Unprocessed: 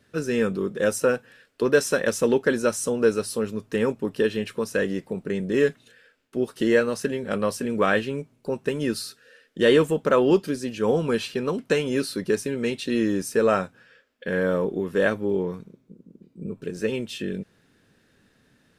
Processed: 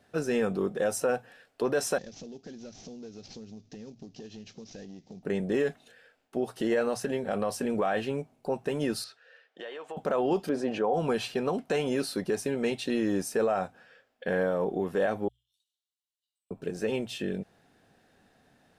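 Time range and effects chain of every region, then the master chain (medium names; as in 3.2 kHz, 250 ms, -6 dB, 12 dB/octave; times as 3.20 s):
1.98–5.23 s: CVSD coder 32 kbps + FFT filter 240 Hz 0 dB, 1 kHz -21 dB, 6.5 kHz +5 dB, 12 kHz -9 dB + compression 8:1, threshold -38 dBFS
9.04–9.97 s: band-pass 650–3800 Hz + compression 8:1, threshold -36 dBFS
10.49–10.94 s: band-pass filter 650 Hz, Q 0.7 + level flattener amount 50%
15.28–16.51 s: treble shelf 11 kHz -10 dB + compression 3:1, threshold -37 dBFS + rippled Chebyshev high-pass 2.8 kHz, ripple 6 dB
whole clip: peaking EQ 740 Hz +15 dB 0.5 oct; hum notches 60/120 Hz; peak limiter -15 dBFS; trim -3.5 dB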